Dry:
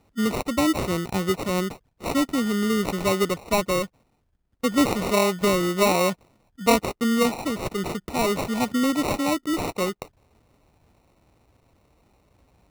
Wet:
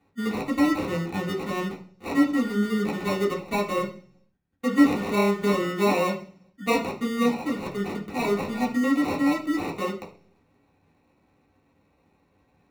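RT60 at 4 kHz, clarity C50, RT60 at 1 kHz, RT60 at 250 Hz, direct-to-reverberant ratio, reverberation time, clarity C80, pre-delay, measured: 0.55 s, 11.5 dB, 0.40 s, 0.70 s, -4.5 dB, 0.45 s, 16.0 dB, 3 ms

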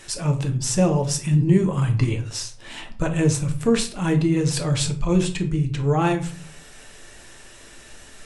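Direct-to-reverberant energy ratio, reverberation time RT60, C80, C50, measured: 4.0 dB, 0.45 s, 16.5 dB, 12.5 dB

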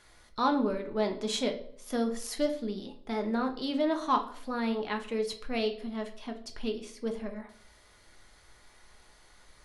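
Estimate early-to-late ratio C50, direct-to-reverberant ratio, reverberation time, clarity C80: 11.5 dB, 4.0 dB, 0.60 s, 15.5 dB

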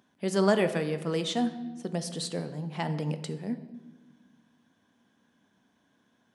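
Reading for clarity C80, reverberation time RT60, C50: 13.5 dB, 1.4 s, 12.0 dB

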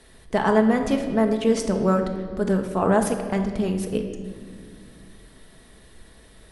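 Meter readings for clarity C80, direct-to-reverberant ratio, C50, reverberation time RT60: 9.0 dB, 3.5 dB, 7.0 dB, 2.0 s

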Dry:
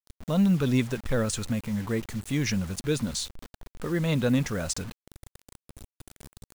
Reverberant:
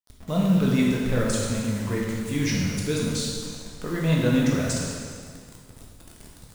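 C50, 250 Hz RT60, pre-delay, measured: 0.0 dB, 2.0 s, 6 ms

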